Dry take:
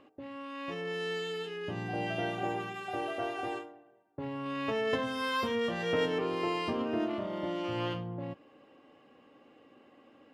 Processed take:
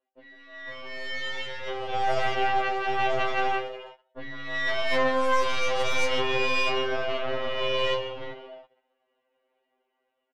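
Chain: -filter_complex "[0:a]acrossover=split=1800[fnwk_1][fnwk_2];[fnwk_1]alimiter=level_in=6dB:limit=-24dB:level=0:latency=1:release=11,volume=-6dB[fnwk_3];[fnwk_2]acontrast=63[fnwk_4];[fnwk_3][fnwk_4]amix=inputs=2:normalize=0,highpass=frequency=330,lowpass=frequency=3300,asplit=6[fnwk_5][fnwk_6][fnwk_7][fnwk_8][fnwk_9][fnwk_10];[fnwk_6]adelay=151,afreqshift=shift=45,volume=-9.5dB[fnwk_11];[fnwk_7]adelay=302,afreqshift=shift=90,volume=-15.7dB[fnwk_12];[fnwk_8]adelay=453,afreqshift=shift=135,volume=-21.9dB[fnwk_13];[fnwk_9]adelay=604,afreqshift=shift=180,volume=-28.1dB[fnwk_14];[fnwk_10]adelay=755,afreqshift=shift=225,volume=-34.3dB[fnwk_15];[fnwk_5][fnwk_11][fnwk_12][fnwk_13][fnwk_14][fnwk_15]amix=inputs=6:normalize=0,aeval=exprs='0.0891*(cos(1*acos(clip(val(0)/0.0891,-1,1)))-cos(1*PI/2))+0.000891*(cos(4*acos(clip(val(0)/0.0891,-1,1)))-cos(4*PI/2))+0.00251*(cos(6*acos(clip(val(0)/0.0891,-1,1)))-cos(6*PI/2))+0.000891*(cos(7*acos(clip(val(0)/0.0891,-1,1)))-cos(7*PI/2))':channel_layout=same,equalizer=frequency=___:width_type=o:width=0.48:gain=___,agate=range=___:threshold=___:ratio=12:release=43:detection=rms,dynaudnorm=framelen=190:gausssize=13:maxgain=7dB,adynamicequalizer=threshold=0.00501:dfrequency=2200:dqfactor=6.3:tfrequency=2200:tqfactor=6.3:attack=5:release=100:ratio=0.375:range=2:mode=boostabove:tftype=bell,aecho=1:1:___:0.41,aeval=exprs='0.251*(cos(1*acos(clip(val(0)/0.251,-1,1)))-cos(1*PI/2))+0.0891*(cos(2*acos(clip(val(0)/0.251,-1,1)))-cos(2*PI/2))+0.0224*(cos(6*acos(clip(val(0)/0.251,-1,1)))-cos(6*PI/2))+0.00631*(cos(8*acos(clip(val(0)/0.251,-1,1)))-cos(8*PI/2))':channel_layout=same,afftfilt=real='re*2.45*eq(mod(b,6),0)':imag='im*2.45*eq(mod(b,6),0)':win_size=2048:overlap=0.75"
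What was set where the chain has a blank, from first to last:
690, 10, -22dB, -51dB, 2.1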